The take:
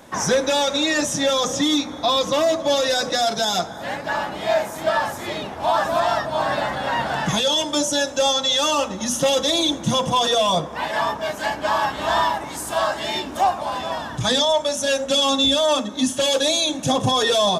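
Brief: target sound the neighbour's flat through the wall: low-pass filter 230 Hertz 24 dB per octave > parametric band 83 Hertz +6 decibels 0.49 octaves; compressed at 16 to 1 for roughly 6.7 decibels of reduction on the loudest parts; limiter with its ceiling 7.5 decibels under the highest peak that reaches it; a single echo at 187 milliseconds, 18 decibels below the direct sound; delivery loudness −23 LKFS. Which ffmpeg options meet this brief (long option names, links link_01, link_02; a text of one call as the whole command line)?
ffmpeg -i in.wav -af "acompressor=threshold=-21dB:ratio=16,alimiter=limit=-19.5dB:level=0:latency=1,lowpass=frequency=230:width=0.5412,lowpass=frequency=230:width=1.3066,equalizer=frequency=83:width_type=o:width=0.49:gain=6,aecho=1:1:187:0.126,volume=18dB" out.wav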